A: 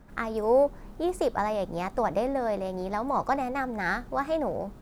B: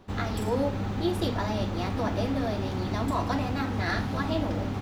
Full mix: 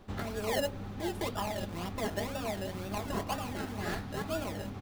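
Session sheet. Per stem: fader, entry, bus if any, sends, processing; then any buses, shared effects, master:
-12.0 dB, 0.00 s, no send, decimation with a swept rate 30×, swing 60% 2 Hz; comb 4.9 ms, depth 76%; modulation noise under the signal 23 dB
-1.0 dB, 0.00 s, polarity flipped, no send, band-stop 940 Hz, Q 23; auto duck -10 dB, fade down 0.25 s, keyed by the first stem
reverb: none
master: none

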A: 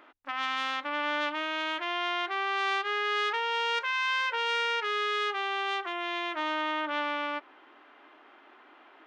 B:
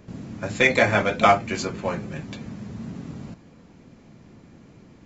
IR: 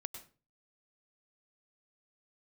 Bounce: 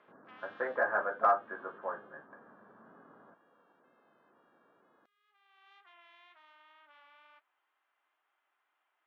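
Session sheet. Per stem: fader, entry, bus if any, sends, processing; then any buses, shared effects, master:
1.84 s -7.5 dB -> 2.25 s -19.5 dB, 0.00 s, no send, peak limiter -25 dBFS, peak gain reduction 8.5 dB; vibrato 2.1 Hz 24 cents; flange 1.2 Hz, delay 5.5 ms, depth 8.1 ms, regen -57%; auto duck -23 dB, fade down 1.30 s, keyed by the second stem
-3.5 dB, 0.00 s, no send, rippled Chebyshev low-pass 1.7 kHz, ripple 3 dB; de-esser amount 100%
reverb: none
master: band-pass 790–4700 Hz

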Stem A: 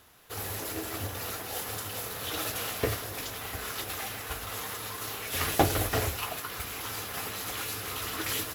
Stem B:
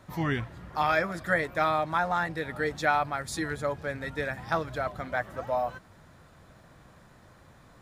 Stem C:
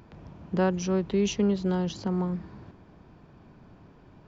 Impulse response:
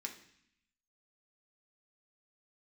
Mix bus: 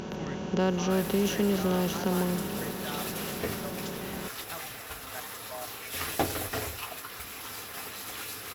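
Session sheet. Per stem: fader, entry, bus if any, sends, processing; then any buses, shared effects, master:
-5.5 dB, 0.60 s, send -7 dB, hum notches 50/100 Hz
-12.0 dB, 0.00 s, no send, level held to a coarse grid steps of 14 dB
-4.0 dB, 0.00 s, no send, spectral levelling over time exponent 0.4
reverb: on, RT60 0.65 s, pre-delay 3 ms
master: none

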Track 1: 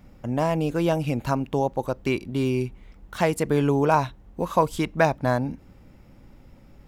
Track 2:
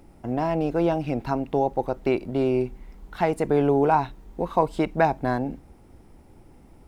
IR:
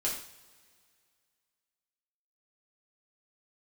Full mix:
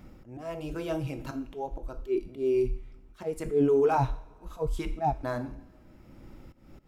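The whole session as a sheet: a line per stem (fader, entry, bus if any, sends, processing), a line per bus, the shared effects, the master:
0.0 dB, 0.00 s, send -21 dB, slow attack 233 ms; small resonant body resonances 330/1300 Hz, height 7 dB; auto duck -12 dB, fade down 0.65 s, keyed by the second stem
-5.5 dB, 0.00 s, polarity flipped, no send, bass shelf 82 Hz +8 dB; transient shaper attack -10 dB, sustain +10 dB; spectral contrast expander 2.5:1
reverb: on, pre-delay 3 ms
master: none

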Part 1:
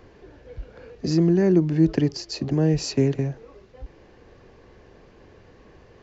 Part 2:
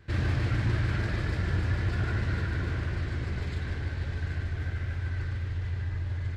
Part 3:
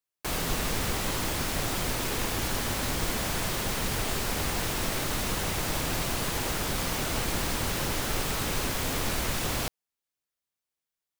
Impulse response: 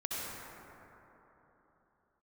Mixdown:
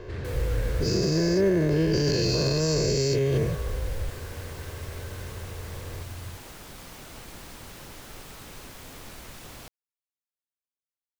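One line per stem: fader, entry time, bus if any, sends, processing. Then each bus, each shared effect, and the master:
-2.0 dB, 0.00 s, no send, every event in the spectrogram widened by 480 ms; comb 1.9 ms, depth 68%
-7.5 dB, 0.00 s, no send, none
-14.0 dB, 0.00 s, no send, none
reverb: none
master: peak limiter -15.5 dBFS, peak gain reduction 8.5 dB

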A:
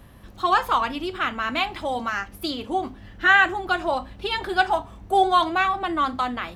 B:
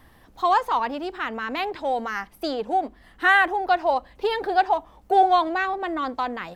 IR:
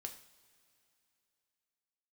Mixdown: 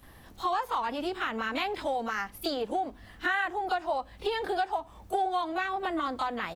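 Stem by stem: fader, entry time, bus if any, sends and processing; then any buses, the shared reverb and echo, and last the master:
-12.0 dB, 0.00 s, no send, treble shelf 2.9 kHz +11 dB
0.0 dB, 27 ms, no send, word length cut 12-bit, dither none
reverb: none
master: compression 4:1, threshold -28 dBFS, peak gain reduction 13 dB

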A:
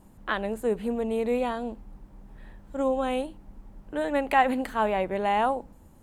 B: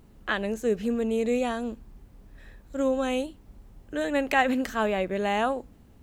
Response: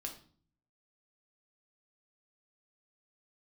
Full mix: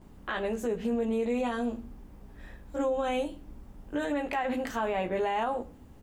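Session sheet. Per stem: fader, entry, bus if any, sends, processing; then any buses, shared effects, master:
-2.0 dB, 0.00 s, no send, low-pass 5.2 kHz
-4.5 dB, 17 ms, send 0 dB, band-stop 4.1 kHz, Q 15; compression, threshold -29 dBFS, peak gain reduction 12.5 dB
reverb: on, RT60 0.45 s, pre-delay 3 ms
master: peak limiter -21.5 dBFS, peak gain reduction 10 dB

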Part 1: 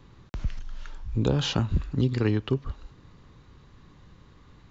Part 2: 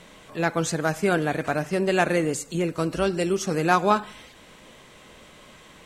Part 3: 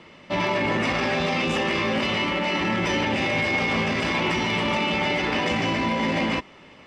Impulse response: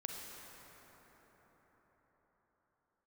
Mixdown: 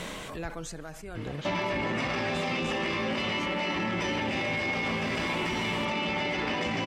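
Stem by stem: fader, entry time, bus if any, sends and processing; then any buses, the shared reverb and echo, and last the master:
-13.5 dB, 0.00 s, no send, none
-11.0 dB, 0.00 s, no send, level flattener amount 70%; auto duck -13 dB, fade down 0.95 s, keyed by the first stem
+1.0 dB, 1.15 s, no send, none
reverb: none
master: compression 4:1, threshold -28 dBFS, peak gain reduction 8 dB

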